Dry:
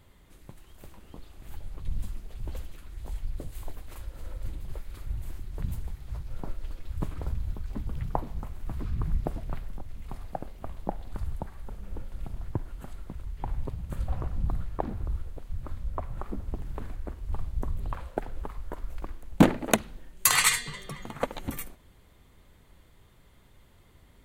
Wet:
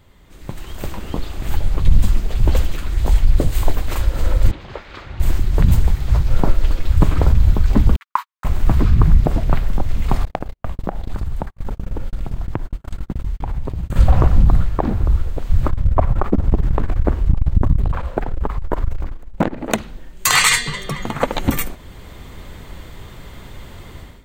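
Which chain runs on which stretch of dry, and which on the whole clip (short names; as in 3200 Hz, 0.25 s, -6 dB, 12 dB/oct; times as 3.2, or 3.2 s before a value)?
4.51–5.2 HPF 720 Hz 6 dB/oct + air absorption 200 m
7.96–8.45 steep high-pass 1000 Hz 72 dB/oct + gate -51 dBFS, range -58 dB
10.25–13.96 gate -37 dBFS, range -55 dB + compressor 16:1, threshold -39 dBFS
15.68–19.7 high shelf 2800 Hz -8 dB + core saturation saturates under 610 Hz
whole clip: bell 11000 Hz -15 dB 0.29 oct; AGC gain up to 16 dB; maximiser +7 dB; gain -1 dB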